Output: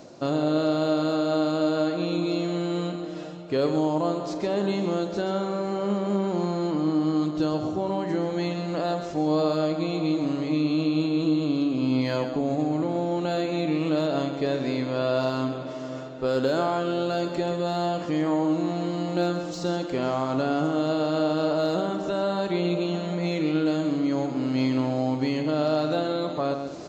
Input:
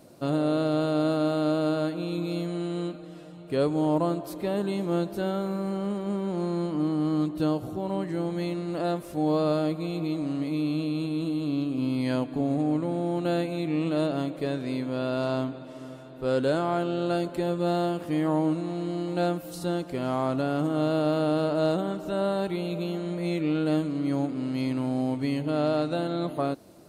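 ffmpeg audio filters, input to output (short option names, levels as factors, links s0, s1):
-filter_complex "[0:a]lowshelf=f=220:g=-8,aresample=16000,aresample=44100,highshelf=f=3000:g=-8,acrossover=split=4500[s0][s1];[s0]alimiter=limit=0.0631:level=0:latency=1:release=93[s2];[s1]aeval=exprs='0.00794*sin(PI/2*1.58*val(0)/0.00794)':c=same[s3];[s2][s3]amix=inputs=2:normalize=0,aecho=1:1:45|131|203:0.237|0.355|0.112,areverse,acompressor=mode=upward:threshold=0.0158:ratio=2.5,areverse,volume=2.24"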